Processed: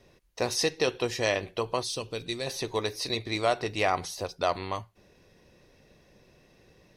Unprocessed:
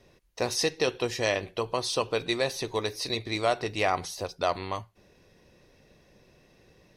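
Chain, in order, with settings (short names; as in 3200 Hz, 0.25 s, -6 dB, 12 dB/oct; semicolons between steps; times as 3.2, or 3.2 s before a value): 1.83–2.47 bell 1000 Hz -12 dB 2.8 oct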